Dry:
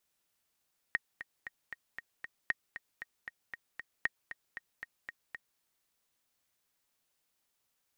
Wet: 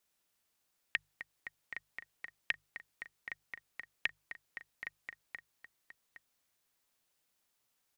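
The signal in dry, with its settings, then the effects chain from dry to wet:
metronome 232 bpm, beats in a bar 6, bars 3, 1870 Hz, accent 12.5 dB -16 dBFS
notches 50/100/150 Hz; on a send: echo 0.815 s -10.5 dB; on the sum: Doppler distortion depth 0.48 ms

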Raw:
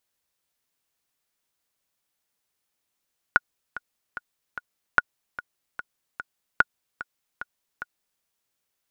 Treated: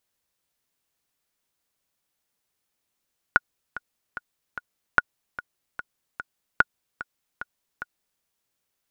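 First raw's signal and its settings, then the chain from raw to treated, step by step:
metronome 148 bpm, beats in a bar 4, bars 3, 1450 Hz, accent 16.5 dB -3 dBFS
low shelf 470 Hz +3 dB

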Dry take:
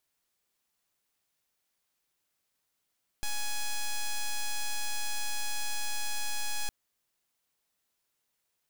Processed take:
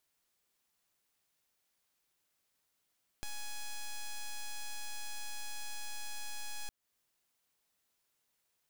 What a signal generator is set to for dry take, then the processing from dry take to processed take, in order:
pulse 837 Hz, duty 5% -30 dBFS 3.46 s
compressor 2.5:1, threshold -45 dBFS

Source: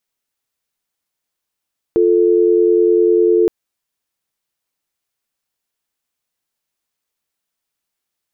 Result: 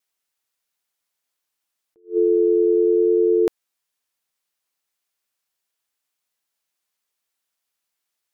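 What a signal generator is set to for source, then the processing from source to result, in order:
call progress tone dial tone, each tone -12 dBFS 1.52 s
low shelf 380 Hz -9.5 dB; vibrato 0.71 Hz 8.3 cents; attack slew limiter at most 280 dB/s

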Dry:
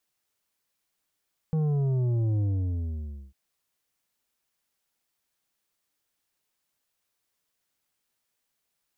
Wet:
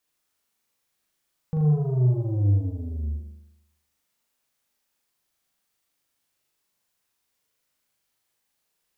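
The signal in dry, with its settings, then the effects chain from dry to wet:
sub drop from 160 Hz, over 1.80 s, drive 8 dB, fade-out 0.93 s, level -23.5 dB
on a send: flutter echo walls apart 6.8 m, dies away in 0.84 s

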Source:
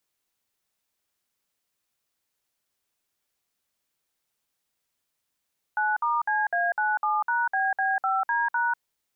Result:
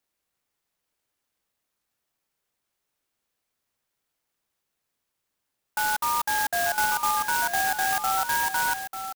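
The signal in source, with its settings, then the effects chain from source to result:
DTMF "9*CA97#BB5D#", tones 0.195 s, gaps 57 ms, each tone -24.5 dBFS
echo 0.893 s -9 dB; clock jitter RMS 0.071 ms

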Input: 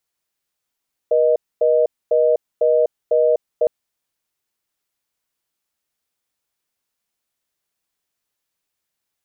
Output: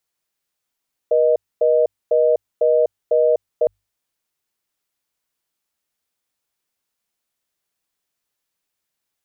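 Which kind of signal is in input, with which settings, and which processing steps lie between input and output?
call progress tone reorder tone, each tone -15 dBFS 2.56 s
notches 50/100 Hz

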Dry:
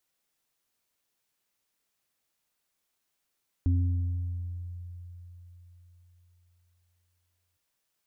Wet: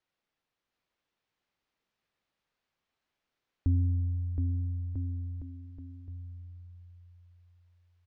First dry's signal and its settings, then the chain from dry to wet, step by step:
sine partials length 3.91 s, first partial 87.9 Hz, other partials 266 Hz, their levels -9 dB, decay 4.04 s, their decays 1.47 s, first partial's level -20.5 dB
air absorption 200 m; on a send: bouncing-ball echo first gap 0.72 s, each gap 0.8×, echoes 5

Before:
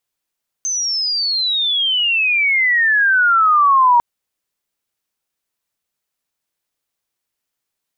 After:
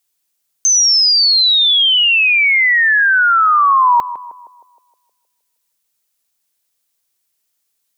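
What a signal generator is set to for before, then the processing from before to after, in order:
chirp logarithmic 6300 Hz -> 940 Hz -17.5 dBFS -> -8 dBFS 3.35 s
high shelf 3500 Hz +12 dB; narrowing echo 0.156 s, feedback 61%, band-pass 510 Hz, level -11.5 dB

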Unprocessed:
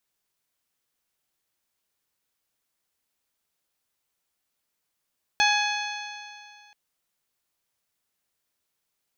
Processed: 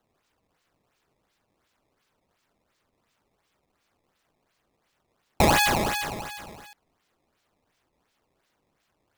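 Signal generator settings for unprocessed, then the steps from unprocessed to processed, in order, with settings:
stretched partials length 1.33 s, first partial 828 Hz, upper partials -1/-1/-4.5/-4.5/-16.5/-10 dB, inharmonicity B 0.0033, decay 2.22 s, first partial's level -21.5 dB
in parallel at 0 dB: limiter -21 dBFS; on the sum: decimation with a swept rate 17×, swing 160% 2.8 Hz

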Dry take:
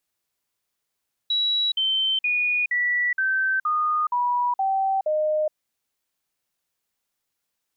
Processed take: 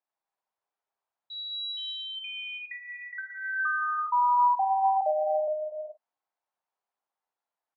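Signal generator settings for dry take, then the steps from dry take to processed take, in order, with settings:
stepped sine 3900 Hz down, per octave 3, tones 9, 0.42 s, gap 0.05 s -19.5 dBFS
band-pass 820 Hz, Q 2.2; early reflections 10 ms -9 dB, 51 ms -12.5 dB; non-linear reverb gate 0.45 s flat, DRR 1 dB

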